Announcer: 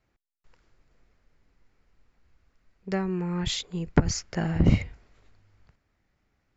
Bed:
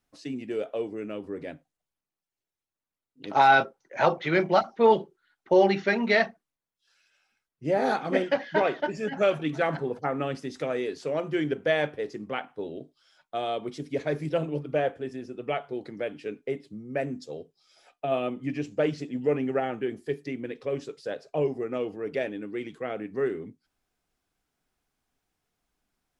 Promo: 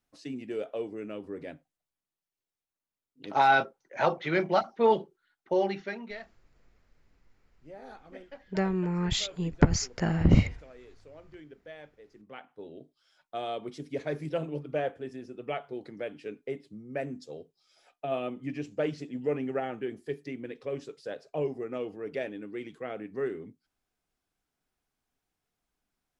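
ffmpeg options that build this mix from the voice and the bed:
-filter_complex "[0:a]adelay=5650,volume=1[s0];[1:a]volume=5.01,afade=t=out:st=5.21:d=0.98:silence=0.11885,afade=t=in:st=12.06:d=1.16:silence=0.133352[s1];[s0][s1]amix=inputs=2:normalize=0"

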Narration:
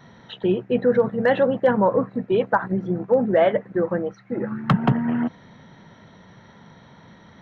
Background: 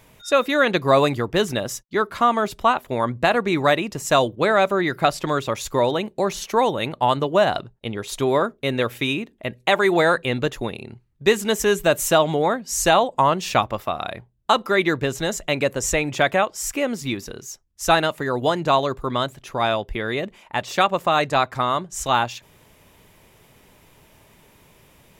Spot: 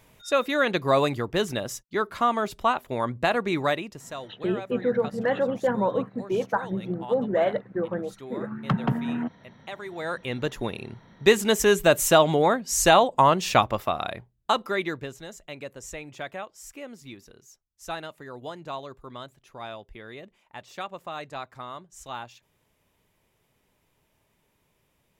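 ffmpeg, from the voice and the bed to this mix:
-filter_complex "[0:a]adelay=4000,volume=0.501[s0];[1:a]volume=5.31,afade=t=out:st=3.55:d=0.59:silence=0.177828,afade=t=in:st=9.95:d=0.97:silence=0.105925,afade=t=out:st=13.8:d=1.41:silence=0.149624[s1];[s0][s1]amix=inputs=2:normalize=0"

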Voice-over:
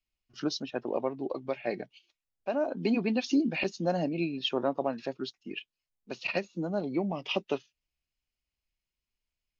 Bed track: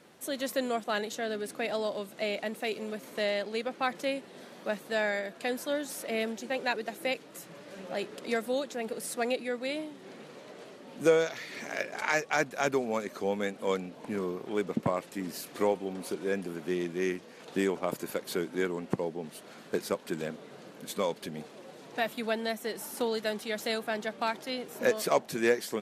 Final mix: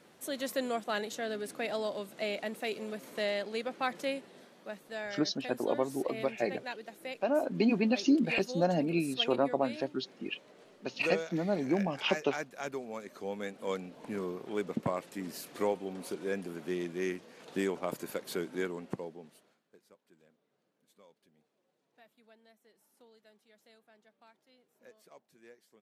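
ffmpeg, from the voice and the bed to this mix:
-filter_complex "[0:a]adelay=4750,volume=1.06[s0];[1:a]volume=1.58,afade=t=out:st=4.12:d=0.41:silence=0.421697,afade=t=in:st=12.96:d=1.11:silence=0.473151,afade=t=out:st=18.55:d=1.05:silence=0.0446684[s1];[s0][s1]amix=inputs=2:normalize=0"

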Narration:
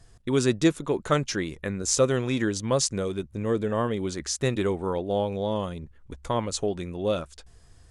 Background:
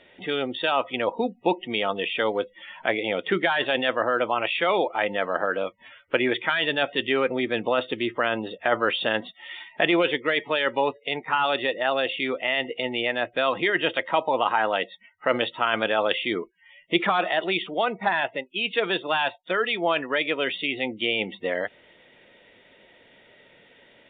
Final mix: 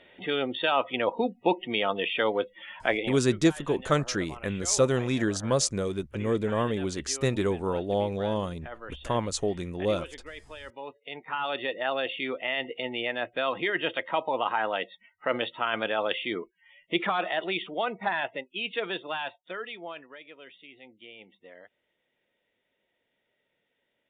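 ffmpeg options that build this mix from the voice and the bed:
-filter_complex "[0:a]adelay=2800,volume=0.891[s0];[1:a]volume=4.47,afade=t=out:st=2.97:d=0.22:silence=0.125893,afade=t=in:st=10.75:d=1.04:silence=0.188365,afade=t=out:st=18.43:d=1.75:silence=0.125893[s1];[s0][s1]amix=inputs=2:normalize=0"

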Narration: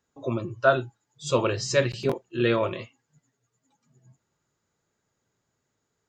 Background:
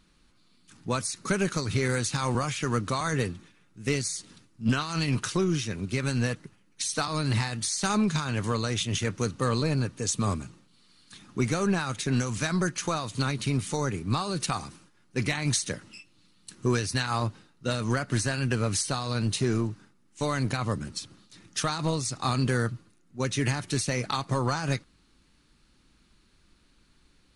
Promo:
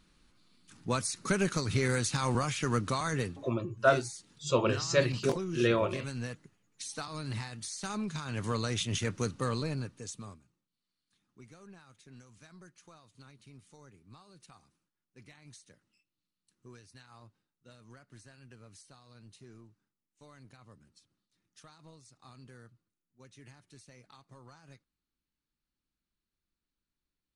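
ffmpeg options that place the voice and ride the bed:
-filter_complex "[0:a]adelay=3200,volume=0.631[s0];[1:a]volume=1.68,afade=t=out:st=2.86:d=0.79:silence=0.375837,afade=t=in:st=8.13:d=0.44:silence=0.446684,afade=t=out:st=9.21:d=1.19:silence=0.0668344[s1];[s0][s1]amix=inputs=2:normalize=0"

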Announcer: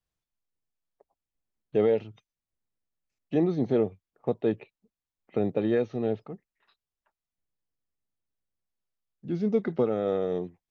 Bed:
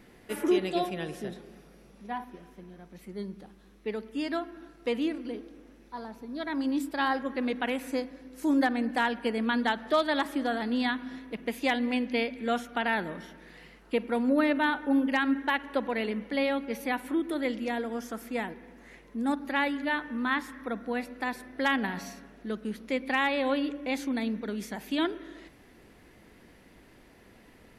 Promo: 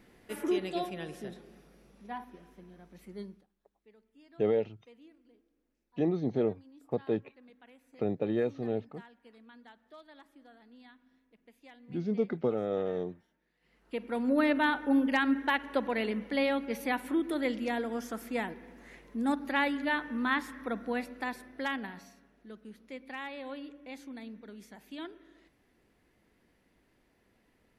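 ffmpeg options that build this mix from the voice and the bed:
-filter_complex "[0:a]adelay=2650,volume=0.596[s0];[1:a]volume=11.9,afade=t=out:st=3.21:d=0.25:silence=0.0749894,afade=t=in:st=13.6:d=0.88:silence=0.0473151,afade=t=out:st=20.87:d=1.22:silence=0.223872[s1];[s0][s1]amix=inputs=2:normalize=0"

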